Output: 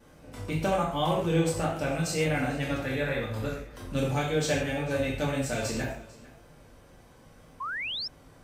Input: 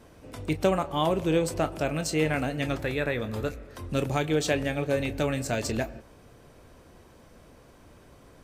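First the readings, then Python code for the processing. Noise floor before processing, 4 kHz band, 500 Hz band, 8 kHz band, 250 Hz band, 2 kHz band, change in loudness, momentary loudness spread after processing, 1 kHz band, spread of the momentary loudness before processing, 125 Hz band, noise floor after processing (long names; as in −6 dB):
−54 dBFS, +1.5 dB, −2.0 dB, 0.0 dB, −1.5 dB, +0.5 dB, −1.5 dB, 10 LU, 0.0 dB, 7 LU, +0.5 dB, −55 dBFS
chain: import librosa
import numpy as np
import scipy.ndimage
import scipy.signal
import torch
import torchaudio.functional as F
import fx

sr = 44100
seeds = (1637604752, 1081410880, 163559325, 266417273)

p1 = fx.rev_gated(x, sr, seeds[0], gate_ms=180, shape='falling', drr_db=-4.5)
p2 = fx.vibrato(p1, sr, rate_hz=1.9, depth_cents=20.0)
p3 = p2 + fx.echo_single(p2, sr, ms=447, db=-21.0, dry=0)
p4 = fx.spec_paint(p3, sr, seeds[1], shape='rise', start_s=7.6, length_s=0.48, low_hz=1000.0, high_hz=5500.0, level_db=-27.0)
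y = p4 * librosa.db_to_amplitude(-6.5)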